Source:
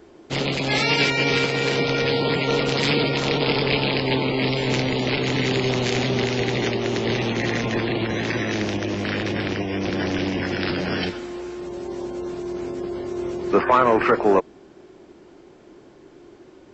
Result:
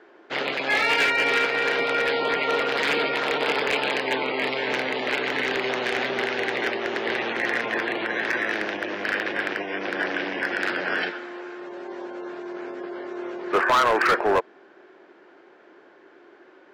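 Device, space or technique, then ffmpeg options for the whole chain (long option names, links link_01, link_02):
megaphone: -af "highpass=460,lowpass=3000,equalizer=frequency=1600:width_type=o:width=0.53:gain=8.5,asoftclip=type=hard:threshold=-15dB"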